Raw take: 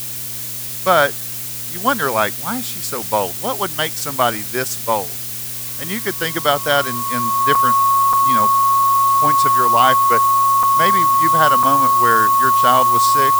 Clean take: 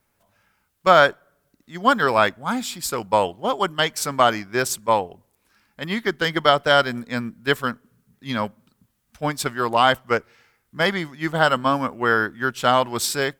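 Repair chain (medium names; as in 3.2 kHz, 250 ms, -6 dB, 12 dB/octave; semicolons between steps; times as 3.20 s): de-hum 118.6 Hz, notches 6; band-stop 1.1 kHz, Q 30; interpolate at 7.55/8.13/10.63/11.63 s, 4.1 ms; noise print and reduce 30 dB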